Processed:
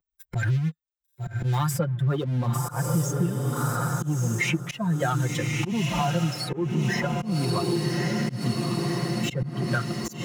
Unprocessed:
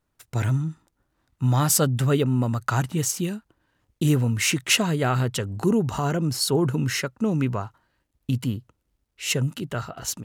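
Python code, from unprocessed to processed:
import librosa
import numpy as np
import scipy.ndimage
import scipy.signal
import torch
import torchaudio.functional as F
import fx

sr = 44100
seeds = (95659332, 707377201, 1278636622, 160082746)

y = fx.bin_expand(x, sr, power=2.0)
y = fx.leveller(y, sr, passes=2)
y = scipy.signal.sosfilt(scipy.signal.butter(2, 50.0, 'highpass', fs=sr, output='sos'), y)
y = fx.peak_eq(y, sr, hz=8200.0, db=-5.0, octaves=2.3)
y = fx.echo_diffused(y, sr, ms=1144, feedback_pct=41, wet_db=-7.5)
y = fx.rider(y, sr, range_db=5, speed_s=0.5)
y = fx.auto_swell(y, sr, attack_ms=328.0)
y = y + 0.81 * np.pad(y, (int(5.7 * sr / 1000.0), 0))[:len(y)]
y = fx.band_squash(y, sr, depth_pct=100)
y = y * librosa.db_to_amplitude(-4.0)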